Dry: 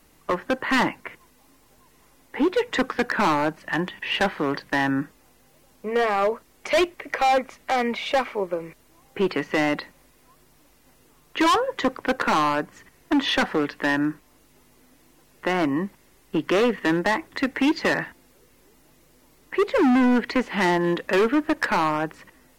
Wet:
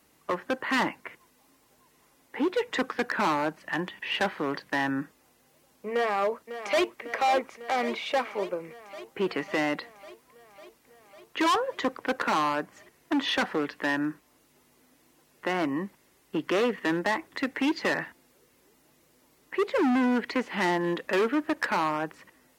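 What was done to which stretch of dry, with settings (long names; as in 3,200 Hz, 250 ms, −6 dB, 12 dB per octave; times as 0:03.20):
0:05.92–0:07.02: delay throw 550 ms, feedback 75%, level −11.5 dB
whole clip: high-pass filter 56 Hz; low-shelf EQ 140 Hz −6.5 dB; level −4.5 dB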